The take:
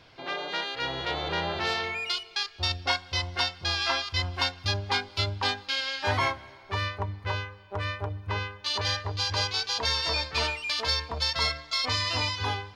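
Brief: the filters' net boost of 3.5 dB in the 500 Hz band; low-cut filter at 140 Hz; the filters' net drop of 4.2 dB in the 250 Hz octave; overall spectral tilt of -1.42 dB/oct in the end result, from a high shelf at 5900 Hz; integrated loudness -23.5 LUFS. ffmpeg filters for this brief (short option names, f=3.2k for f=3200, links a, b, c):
-af "highpass=140,equalizer=f=250:t=o:g=-9,equalizer=f=500:t=o:g=6.5,highshelf=f=5.9k:g=6.5,volume=3.5dB"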